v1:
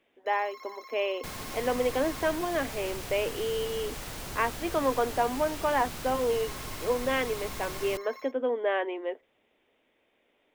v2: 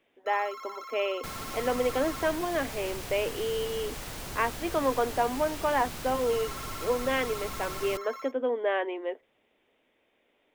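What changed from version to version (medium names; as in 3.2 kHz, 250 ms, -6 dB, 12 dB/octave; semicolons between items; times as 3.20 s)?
first sound: remove static phaser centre 2 kHz, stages 8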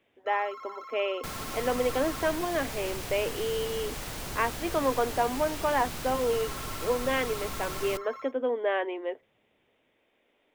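first sound: add tilt EQ -3.5 dB/octave; second sound: send +10.5 dB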